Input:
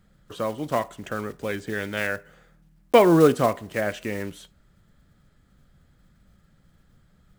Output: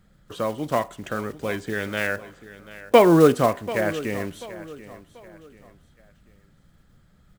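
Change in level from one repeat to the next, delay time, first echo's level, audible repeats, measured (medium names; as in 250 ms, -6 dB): -9.0 dB, 737 ms, -16.5 dB, 3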